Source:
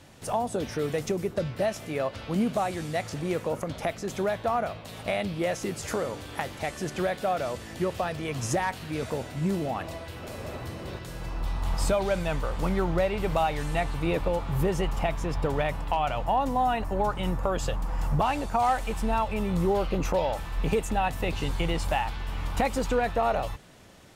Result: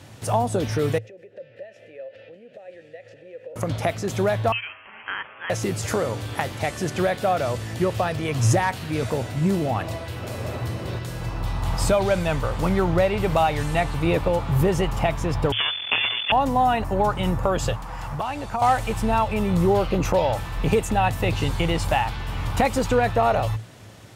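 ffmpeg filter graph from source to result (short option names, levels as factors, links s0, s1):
-filter_complex "[0:a]asettb=1/sr,asplit=3[s0][s1][s2];[s0]atrim=end=0.984[s3];[s1]atrim=start=0.98:end=3.56,asetpts=PTS-STARTPTS,afade=t=in:d=0.004:c=qsin,afade=t=out:st=2.576:d=0.004:c=qsin,acompressor=threshold=0.02:ratio=5:attack=3.2:release=140:knee=1:detection=peak,asplit=3[s4][s5][s6];[s4]bandpass=f=530:t=q:w=8,volume=1[s7];[s5]bandpass=f=1840:t=q:w=8,volume=0.501[s8];[s6]bandpass=f=2480:t=q:w=8,volume=0.355[s9];[s7][s8][s9]amix=inputs=3:normalize=0[s10];[s2]atrim=start=3.556[s11];[s3][s10]acrossfade=d=0.004:c1=hsin:c2=qsin[s12];[s12][s11]acrossfade=d=0.004:c1=qsin:c2=hsin,asettb=1/sr,asplit=3[s13][s14][s15];[s13]atrim=end=4.524[s16];[s14]atrim=start=4.52:end=5.5,asetpts=PTS-STARTPTS,afade=t=in:d=0.004:c=qsin,afade=t=out:st=0.976:d=0.004:c=qsin,highpass=f=1100:w=0.5412,highpass=f=1100:w=1.3066,lowpass=f=3200:t=q:w=0.5098,lowpass=f=3200:t=q:w=0.6013,lowpass=f=3200:t=q:w=0.9,lowpass=f=3200:t=q:w=2.563,afreqshift=-3800[s17];[s15]atrim=start=5.496[s18];[s16][s17]acrossfade=d=0.004:c1=hsin:c2=qsin[s19];[s19][s18]acrossfade=d=0.004:c1=qsin:c2=hsin,asettb=1/sr,asplit=3[s20][s21][s22];[s20]atrim=end=15.524[s23];[s21]atrim=start=15.52:end=16.32,asetpts=PTS-STARTPTS,afade=t=in:d=0.004:c=qsin,afade=t=out:st=0.796:d=0.004:c=qsin,lowshelf=f=76:g=-4,acrusher=bits=4:dc=4:mix=0:aa=0.000001,lowpass=f=3000:t=q:w=0.5098,lowpass=f=3000:t=q:w=0.6013,lowpass=f=3000:t=q:w=0.9,lowpass=f=3000:t=q:w=2.563,afreqshift=-3500[s24];[s22]atrim=start=16.316[s25];[s23][s24]acrossfade=d=0.004:c1=hsin:c2=qsin[s26];[s26][s25]acrossfade=d=0.004:c1=qsin:c2=hsin,asettb=1/sr,asplit=3[s27][s28][s29];[s27]atrim=end=17.724[s30];[s28]atrim=start=17.72:end=18.62,asetpts=PTS-STARTPTS,afade=t=in:d=0.004:c=qsin,afade=t=out:st=0.896:d=0.004:c=qsin,acrossover=split=680|4800[s31][s32][s33];[s31]acompressor=threshold=0.0158:ratio=4[s34];[s32]acompressor=threshold=0.02:ratio=4[s35];[s33]acompressor=threshold=0.00126:ratio=4[s36];[s34][s35][s36]amix=inputs=3:normalize=0,equalizer=f=14000:w=4.3:g=-3[s37];[s29]atrim=start=18.616[s38];[s30][s37]acrossfade=d=0.004:c1=hsin:c2=qsin[s39];[s39][s38]acrossfade=d=0.004:c1=qsin:c2=hsin,highpass=49,equalizer=f=110:t=o:w=0.23:g=14.5,volume=1.88"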